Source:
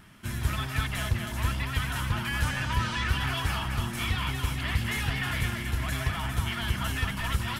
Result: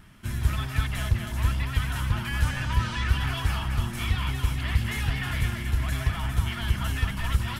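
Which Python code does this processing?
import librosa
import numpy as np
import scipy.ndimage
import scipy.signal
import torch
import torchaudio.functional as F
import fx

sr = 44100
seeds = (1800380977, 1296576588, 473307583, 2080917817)

y = fx.low_shelf(x, sr, hz=91.0, db=10.0)
y = y * librosa.db_to_amplitude(-1.5)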